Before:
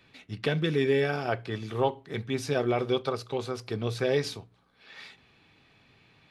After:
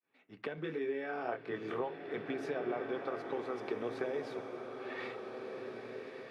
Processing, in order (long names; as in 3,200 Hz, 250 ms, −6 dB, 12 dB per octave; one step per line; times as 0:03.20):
fade in at the beginning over 1.41 s
three-way crossover with the lows and the highs turned down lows −23 dB, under 240 Hz, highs −18 dB, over 2,300 Hz
downward compressor 5 to 1, threshold −43 dBFS, peak gain reduction 19.5 dB
0:00.55–0:01.81: double-tracking delay 25 ms −4.5 dB
slow-attack reverb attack 1,920 ms, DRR 3.5 dB
level +6 dB